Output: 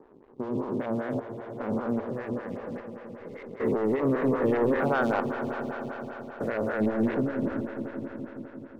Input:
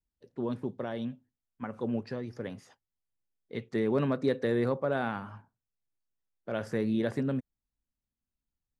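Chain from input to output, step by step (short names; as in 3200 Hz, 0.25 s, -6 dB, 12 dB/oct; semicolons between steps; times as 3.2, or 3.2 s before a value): stepped spectrum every 0.4 s; LFO low-pass saw up 3.5 Hz 940–2400 Hz; sample leveller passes 2; on a send: swelling echo 85 ms, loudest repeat 5, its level -15 dB; on the sum: photocell phaser 5.1 Hz; gain +2.5 dB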